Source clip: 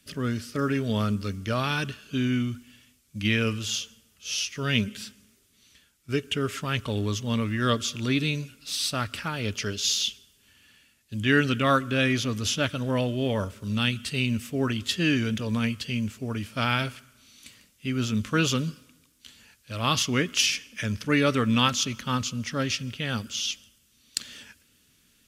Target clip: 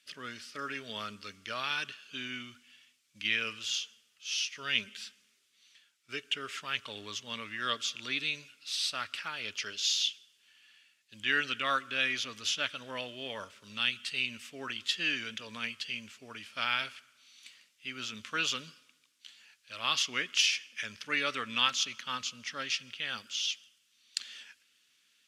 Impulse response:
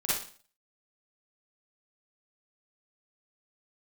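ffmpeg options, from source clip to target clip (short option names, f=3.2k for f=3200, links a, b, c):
-af "bandpass=f=2.9k:t=q:w=0.71:csg=0,volume=-2dB"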